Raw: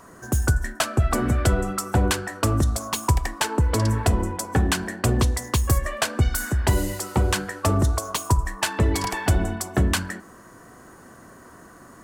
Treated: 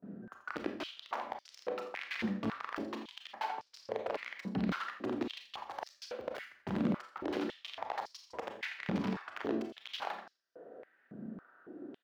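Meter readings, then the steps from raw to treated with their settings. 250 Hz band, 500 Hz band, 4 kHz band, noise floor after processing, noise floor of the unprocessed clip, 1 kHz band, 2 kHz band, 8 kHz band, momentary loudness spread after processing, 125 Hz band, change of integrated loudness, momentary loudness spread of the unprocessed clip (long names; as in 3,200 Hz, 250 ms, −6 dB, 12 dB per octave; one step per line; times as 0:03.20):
−10.5 dB, −12.0 dB, −14.5 dB, −70 dBFS, −47 dBFS, −13.0 dB, −13.5 dB, −32.0 dB, 13 LU, −25.0 dB, −16.5 dB, 4 LU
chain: adaptive Wiener filter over 41 samples
on a send: echo with shifted repeats 84 ms, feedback 31%, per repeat −140 Hz, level −10 dB
on the sum: background noise brown −61 dBFS
reversed playback
downward compressor 10 to 1, threshold −30 dBFS, peak gain reduction 16.5 dB
reversed playback
wrap-around overflow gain 25.5 dB
noise gate with hold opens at −47 dBFS
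high-frequency loss of the air 280 metres
four-comb reverb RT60 0.41 s, combs from 28 ms, DRR 4.5 dB
high-pass on a step sequencer 3.6 Hz 200–5,200 Hz
level −3 dB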